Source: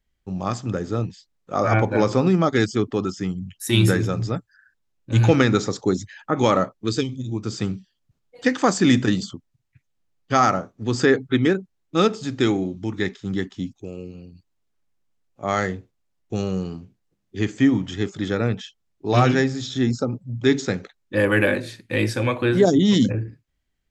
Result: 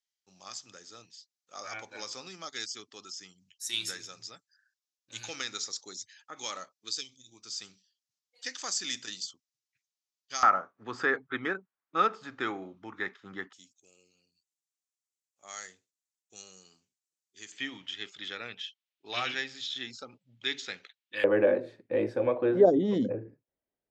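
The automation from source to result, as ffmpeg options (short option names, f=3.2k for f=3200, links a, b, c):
-af "asetnsamples=n=441:p=0,asendcmd='10.43 bandpass f 1300;13.53 bandpass f 7400;17.52 bandpass f 3100;21.24 bandpass f 540',bandpass=f=5.6k:t=q:w=1.9:csg=0"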